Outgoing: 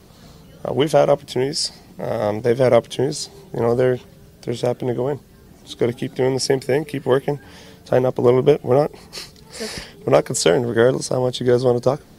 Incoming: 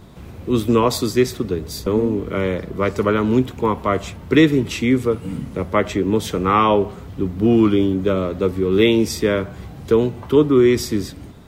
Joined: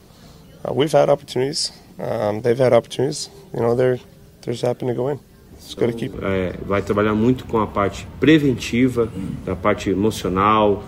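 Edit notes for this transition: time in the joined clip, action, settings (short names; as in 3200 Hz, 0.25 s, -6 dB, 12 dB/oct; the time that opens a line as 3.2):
outgoing
5.52 add incoming from 1.61 s 0.62 s -12 dB
6.14 switch to incoming from 2.23 s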